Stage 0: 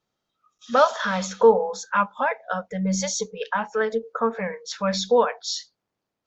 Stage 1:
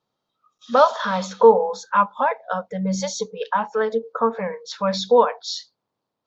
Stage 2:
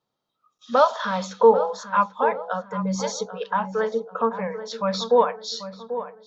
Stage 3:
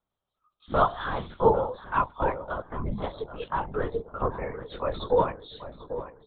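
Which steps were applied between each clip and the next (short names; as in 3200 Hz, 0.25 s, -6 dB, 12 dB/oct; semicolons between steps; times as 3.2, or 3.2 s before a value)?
ten-band EQ 125 Hz +8 dB, 250 Hz +6 dB, 500 Hz +7 dB, 1000 Hz +11 dB, 4000 Hz +9 dB; gain -7.5 dB
darkening echo 0.789 s, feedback 43%, low-pass 1500 Hz, level -11 dB; gain -2.5 dB
LPC vocoder at 8 kHz whisper; gain -5 dB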